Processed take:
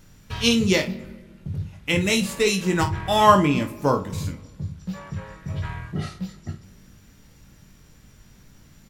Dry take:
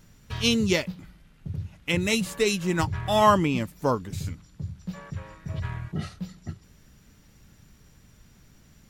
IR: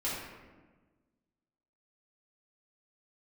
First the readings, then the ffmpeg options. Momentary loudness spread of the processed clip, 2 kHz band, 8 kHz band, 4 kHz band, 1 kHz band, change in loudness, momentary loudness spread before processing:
18 LU, +4.0 dB, +3.5 dB, +3.5 dB, +4.5 dB, +3.5 dB, 18 LU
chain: -filter_complex "[0:a]aecho=1:1:21|52:0.473|0.282,asplit=2[s0][s1];[1:a]atrim=start_sample=2205[s2];[s1][s2]afir=irnorm=-1:irlink=0,volume=0.106[s3];[s0][s3]amix=inputs=2:normalize=0,volume=1.26"

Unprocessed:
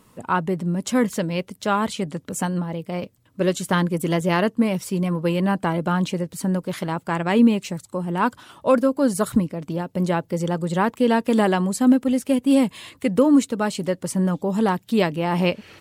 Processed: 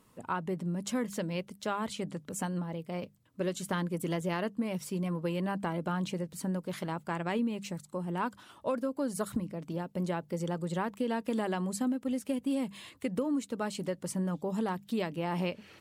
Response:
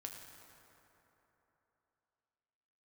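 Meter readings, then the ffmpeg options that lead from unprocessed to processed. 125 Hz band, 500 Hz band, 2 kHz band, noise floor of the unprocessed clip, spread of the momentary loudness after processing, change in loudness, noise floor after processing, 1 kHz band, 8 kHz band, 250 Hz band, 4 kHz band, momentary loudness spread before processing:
-11.0 dB, -12.5 dB, -12.0 dB, -58 dBFS, 5 LU, -12.5 dB, -62 dBFS, -12.0 dB, -10.0 dB, -13.0 dB, -11.5 dB, 9 LU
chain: -af "bandreject=f=50:t=h:w=6,bandreject=f=100:t=h:w=6,bandreject=f=150:t=h:w=6,bandreject=f=200:t=h:w=6,acompressor=threshold=0.112:ratio=6,volume=0.355"

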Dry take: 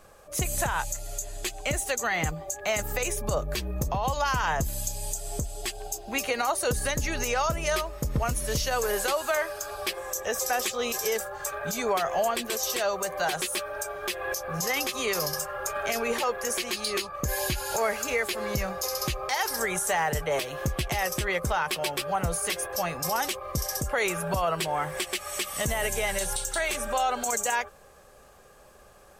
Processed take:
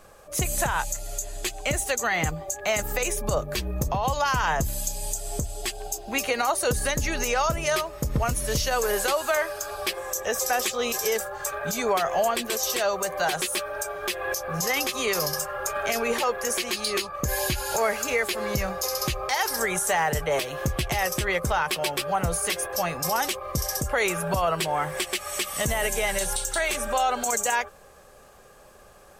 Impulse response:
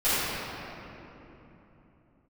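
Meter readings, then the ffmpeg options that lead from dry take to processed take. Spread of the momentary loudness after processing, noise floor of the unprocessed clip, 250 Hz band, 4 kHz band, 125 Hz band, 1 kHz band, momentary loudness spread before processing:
5 LU, -53 dBFS, +2.5 dB, +2.5 dB, +2.0 dB, +2.5 dB, 5 LU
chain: -af "bandreject=f=50:t=h:w=6,bandreject=f=100:t=h:w=6,volume=1.33"

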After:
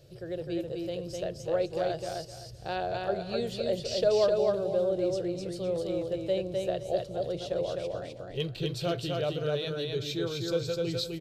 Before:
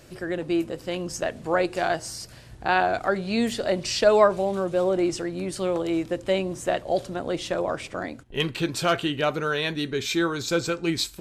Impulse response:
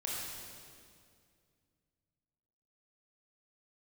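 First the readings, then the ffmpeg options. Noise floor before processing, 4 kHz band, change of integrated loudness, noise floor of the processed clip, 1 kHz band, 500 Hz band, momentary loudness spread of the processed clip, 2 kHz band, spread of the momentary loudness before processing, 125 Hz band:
-46 dBFS, -6.5 dB, -6.0 dB, -45 dBFS, -11.0 dB, -4.0 dB, 9 LU, -14.5 dB, 9 LU, -2.5 dB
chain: -af "equalizer=f=125:t=o:w=1:g=12,equalizer=f=250:t=o:w=1:g=-11,equalizer=f=500:t=o:w=1:g=10,equalizer=f=1000:t=o:w=1:g=-10,equalizer=f=2000:t=o:w=1:g=-8,equalizer=f=4000:t=o:w=1:g=6,equalizer=f=8000:t=o:w=1:g=-7,aecho=1:1:256|512|768:0.708|0.17|0.0408,volume=0.355"

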